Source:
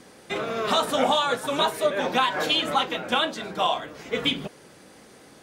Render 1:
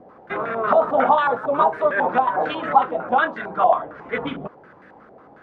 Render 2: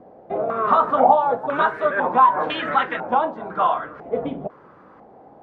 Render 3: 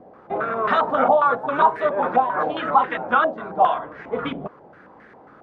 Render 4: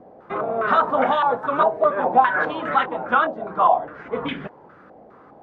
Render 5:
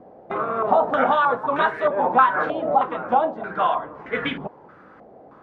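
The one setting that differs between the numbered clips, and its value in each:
stepped low-pass, rate: 11, 2, 7.4, 4.9, 3.2 Hz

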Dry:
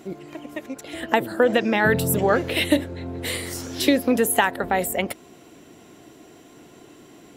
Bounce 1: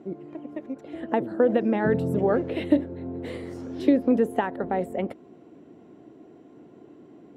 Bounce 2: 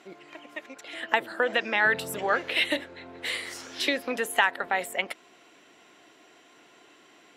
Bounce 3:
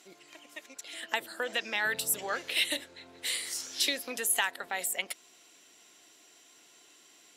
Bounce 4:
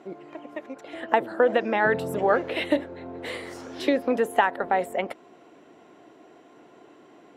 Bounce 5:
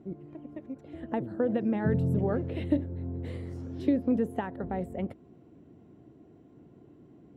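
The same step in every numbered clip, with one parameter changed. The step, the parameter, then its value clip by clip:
band-pass, frequency: 280, 2100, 5900, 810, 100 Hz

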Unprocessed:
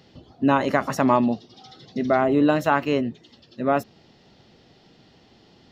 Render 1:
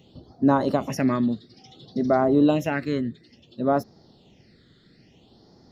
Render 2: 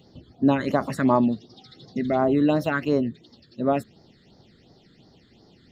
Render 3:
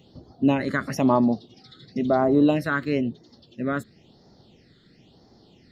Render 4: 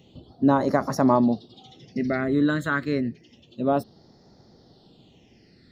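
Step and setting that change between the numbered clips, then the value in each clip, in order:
phaser, rate: 0.58, 2.8, 0.99, 0.29 Hz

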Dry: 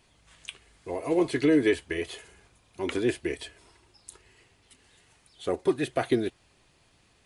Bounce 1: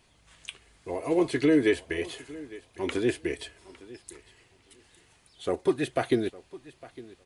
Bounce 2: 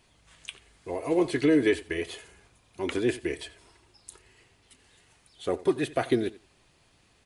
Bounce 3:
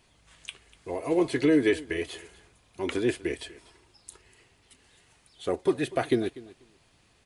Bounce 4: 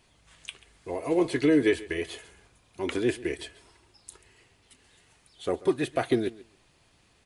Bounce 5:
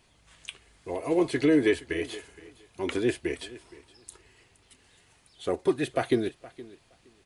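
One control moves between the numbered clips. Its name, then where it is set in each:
feedback echo, time: 857, 88, 244, 137, 468 ms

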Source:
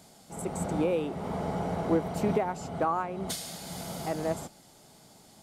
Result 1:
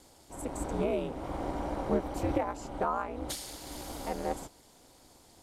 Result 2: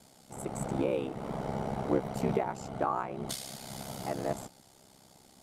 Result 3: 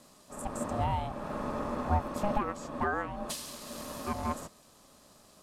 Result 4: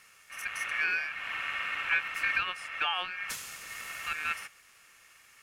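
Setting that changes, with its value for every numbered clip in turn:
ring modulator, frequency: 120, 33, 410, 2000 Hz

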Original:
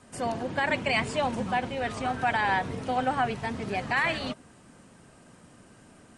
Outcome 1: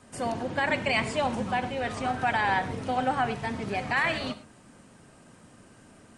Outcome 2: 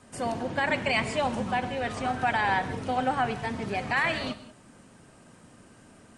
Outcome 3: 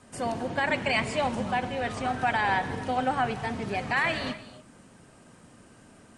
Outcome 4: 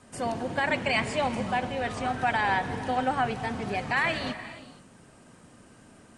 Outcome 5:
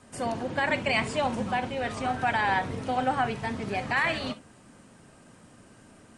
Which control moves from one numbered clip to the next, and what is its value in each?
non-linear reverb, gate: 140, 210, 320, 520, 90 ms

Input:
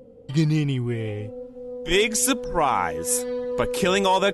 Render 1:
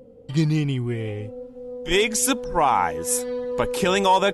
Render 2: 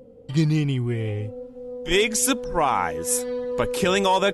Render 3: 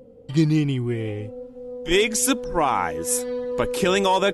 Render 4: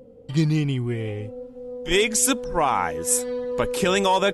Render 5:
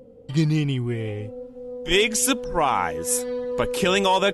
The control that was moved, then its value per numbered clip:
dynamic EQ, frequency: 860, 100, 320, 8100, 2900 Hz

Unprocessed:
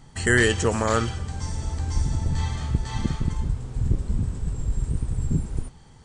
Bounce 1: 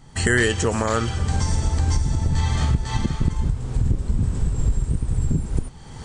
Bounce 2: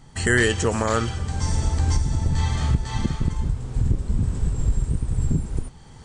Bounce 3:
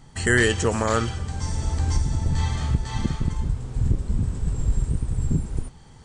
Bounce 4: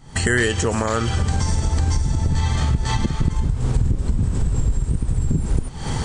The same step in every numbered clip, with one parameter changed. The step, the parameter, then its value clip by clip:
recorder AGC, rising by: 33, 14, 5.1, 89 dB/s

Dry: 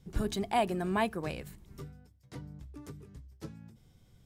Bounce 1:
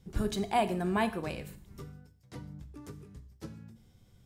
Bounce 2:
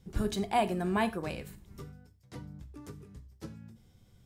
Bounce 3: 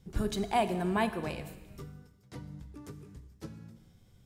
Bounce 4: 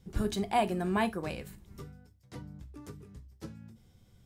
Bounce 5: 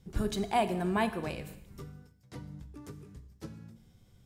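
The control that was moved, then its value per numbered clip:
non-linear reverb, gate: 200, 130, 490, 90, 330 ms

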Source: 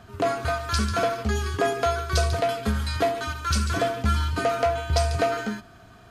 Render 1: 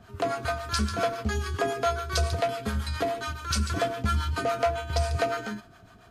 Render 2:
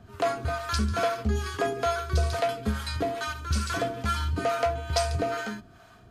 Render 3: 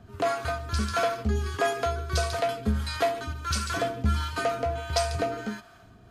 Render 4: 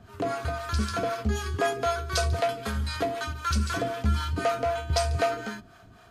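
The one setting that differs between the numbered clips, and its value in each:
harmonic tremolo, rate: 7.2, 2.3, 1.5, 3.9 Hz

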